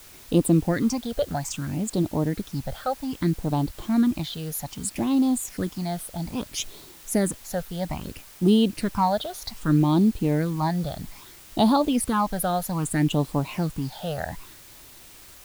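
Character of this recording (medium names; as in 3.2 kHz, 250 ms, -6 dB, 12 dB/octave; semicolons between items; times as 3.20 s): phasing stages 8, 0.62 Hz, lowest notch 290–2000 Hz; a quantiser's noise floor 8-bit, dither triangular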